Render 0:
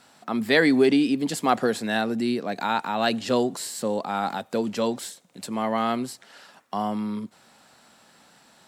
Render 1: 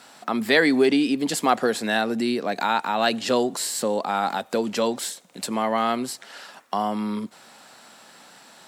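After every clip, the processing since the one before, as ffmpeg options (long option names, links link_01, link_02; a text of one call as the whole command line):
ffmpeg -i in.wav -filter_complex "[0:a]highpass=frequency=280:poles=1,asplit=2[link_01][link_02];[link_02]acompressor=threshold=-32dB:ratio=6,volume=2.5dB[link_03];[link_01][link_03]amix=inputs=2:normalize=0" out.wav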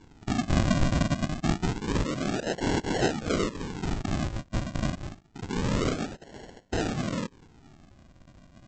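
ffmpeg -i in.wav -af "equalizer=frequency=430:width=1.5:gain=-3.5,afftfilt=real='hypot(re,im)*cos(2*PI*random(0))':imag='hypot(re,im)*sin(2*PI*random(1))':win_size=512:overlap=0.75,aresample=16000,acrusher=samples=25:mix=1:aa=0.000001:lfo=1:lforange=25:lforate=0.27,aresample=44100,volume=3dB" out.wav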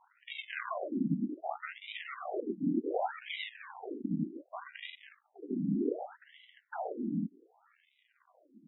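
ffmpeg -i in.wav -af "afftfilt=real='re*between(b*sr/1024,230*pow(2800/230,0.5+0.5*sin(2*PI*0.66*pts/sr))/1.41,230*pow(2800/230,0.5+0.5*sin(2*PI*0.66*pts/sr))*1.41)':imag='im*between(b*sr/1024,230*pow(2800/230,0.5+0.5*sin(2*PI*0.66*pts/sr))/1.41,230*pow(2800/230,0.5+0.5*sin(2*PI*0.66*pts/sr))*1.41)':win_size=1024:overlap=0.75" out.wav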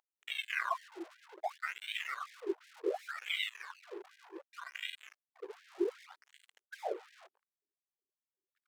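ffmpeg -i in.wav -af "aeval=exprs='sgn(val(0))*max(abs(val(0))-0.00211,0)':channel_layout=same,aeval=exprs='val(0)+0.00355*(sin(2*PI*50*n/s)+sin(2*PI*2*50*n/s)/2+sin(2*PI*3*50*n/s)/3+sin(2*PI*4*50*n/s)/4+sin(2*PI*5*50*n/s)/5)':channel_layout=same,afftfilt=real='re*gte(b*sr/1024,320*pow(1600/320,0.5+0.5*sin(2*PI*2.7*pts/sr)))':imag='im*gte(b*sr/1024,320*pow(1600/320,0.5+0.5*sin(2*PI*2.7*pts/sr)))':win_size=1024:overlap=0.75,volume=5.5dB" out.wav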